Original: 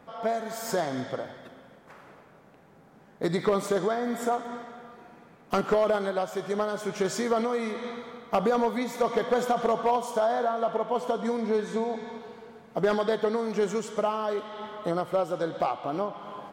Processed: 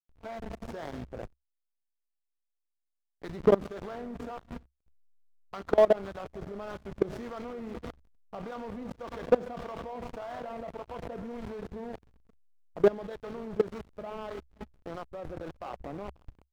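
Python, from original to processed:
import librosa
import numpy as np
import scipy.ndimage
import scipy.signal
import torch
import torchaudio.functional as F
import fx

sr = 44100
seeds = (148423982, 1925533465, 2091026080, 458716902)

p1 = fx.harmonic_tremolo(x, sr, hz=1.7, depth_pct=70, crossover_hz=820.0)
p2 = fx.quant_dither(p1, sr, seeds[0], bits=8, dither='triangular')
p3 = p1 + (p2 * librosa.db_to_amplitude(-8.0))
p4 = fx.peak_eq(p3, sr, hz=9200.0, db=-9.5, octaves=0.83)
p5 = fx.doubler(p4, sr, ms=25.0, db=-13.5)
p6 = p5 + 10.0 ** (-17.5 / 20.0) * np.pad(p5, (int(528 * sr / 1000.0), 0))[:len(p5)]
p7 = fx.backlash(p6, sr, play_db=-26.0)
p8 = fx.level_steps(p7, sr, step_db=22)
p9 = fx.peak_eq(p8, sr, hz=66.0, db=8.0, octaves=0.33)
p10 = np.interp(np.arange(len(p9)), np.arange(len(p9))[::2], p9[::2])
y = p10 * librosa.db_to_amplitude(5.0)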